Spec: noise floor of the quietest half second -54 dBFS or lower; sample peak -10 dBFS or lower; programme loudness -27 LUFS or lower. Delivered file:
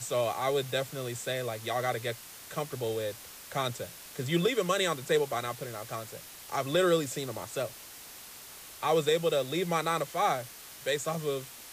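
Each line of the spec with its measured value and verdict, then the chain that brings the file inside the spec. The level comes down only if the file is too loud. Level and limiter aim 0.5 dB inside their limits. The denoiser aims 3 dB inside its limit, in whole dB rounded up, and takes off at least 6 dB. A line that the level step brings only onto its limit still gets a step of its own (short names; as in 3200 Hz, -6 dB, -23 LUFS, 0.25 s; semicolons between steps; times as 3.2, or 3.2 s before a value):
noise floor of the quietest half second -48 dBFS: fail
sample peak -15.0 dBFS: OK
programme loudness -31.0 LUFS: OK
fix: denoiser 9 dB, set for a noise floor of -48 dBFS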